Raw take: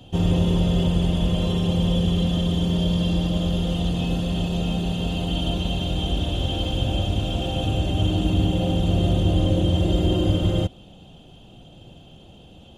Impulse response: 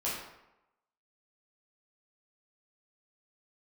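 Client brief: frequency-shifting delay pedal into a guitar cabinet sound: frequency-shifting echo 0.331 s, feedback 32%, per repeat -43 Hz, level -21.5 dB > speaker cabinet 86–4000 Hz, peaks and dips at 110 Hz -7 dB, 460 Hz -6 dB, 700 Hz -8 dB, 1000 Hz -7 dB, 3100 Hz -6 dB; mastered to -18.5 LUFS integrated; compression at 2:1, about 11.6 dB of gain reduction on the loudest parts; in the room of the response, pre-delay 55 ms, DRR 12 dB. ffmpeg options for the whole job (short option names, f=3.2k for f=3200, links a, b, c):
-filter_complex "[0:a]acompressor=threshold=-38dB:ratio=2,asplit=2[a][b];[1:a]atrim=start_sample=2205,adelay=55[c];[b][c]afir=irnorm=-1:irlink=0,volume=-18dB[d];[a][d]amix=inputs=2:normalize=0,asplit=3[e][f][g];[f]adelay=331,afreqshift=-43,volume=-21.5dB[h];[g]adelay=662,afreqshift=-86,volume=-31.4dB[i];[e][h][i]amix=inputs=3:normalize=0,highpass=86,equalizer=f=110:t=q:w=4:g=-7,equalizer=f=460:t=q:w=4:g=-6,equalizer=f=700:t=q:w=4:g=-8,equalizer=f=1k:t=q:w=4:g=-7,equalizer=f=3.1k:t=q:w=4:g=-6,lowpass=f=4k:w=0.5412,lowpass=f=4k:w=1.3066,volume=17.5dB"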